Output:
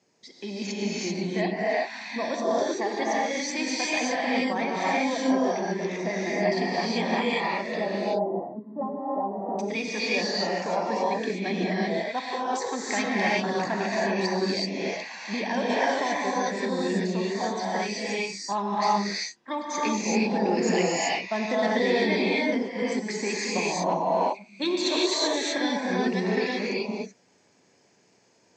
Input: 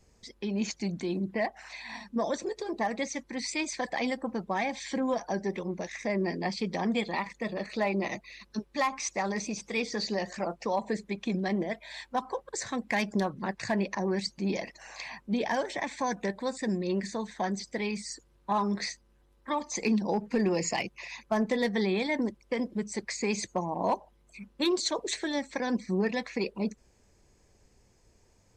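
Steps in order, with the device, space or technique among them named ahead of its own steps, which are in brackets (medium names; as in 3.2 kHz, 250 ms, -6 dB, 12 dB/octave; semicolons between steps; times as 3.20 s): 7.79–9.59 s: inverse Chebyshev low-pass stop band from 2.2 kHz, stop band 50 dB; television speaker (cabinet simulation 170–6600 Hz, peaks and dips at 210 Hz -4 dB, 440 Hz -3 dB, 1.2 kHz -3 dB); gated-style reverb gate 410 ms rising, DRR -6.5 dB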